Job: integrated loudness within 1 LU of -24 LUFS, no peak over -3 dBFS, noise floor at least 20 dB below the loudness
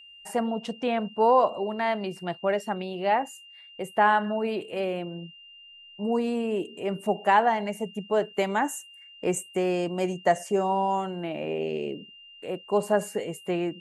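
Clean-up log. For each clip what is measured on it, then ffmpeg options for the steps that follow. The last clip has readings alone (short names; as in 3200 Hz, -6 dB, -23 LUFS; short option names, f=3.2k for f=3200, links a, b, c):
steady tone 2800 Hz; tone level -47 dBFS; loudness -27.0 LUFS; peak -8.0 dBFS; loudness target -24.0 LUFS
-> -af "bandreject=f=2.8k:w=30"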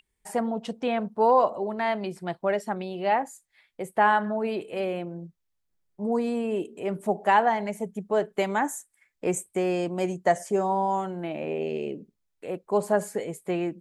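steady tone none; loudness -27.0 LUFS; peak -8.0 dBFS; loudness target -24.0 LUFS
-> -af "volume=3dB"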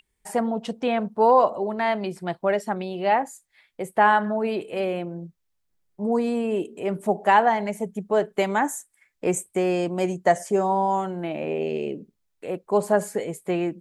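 loudness -24.0 LUFS; peak -5.0 dBFS; noise floor -74 dBFS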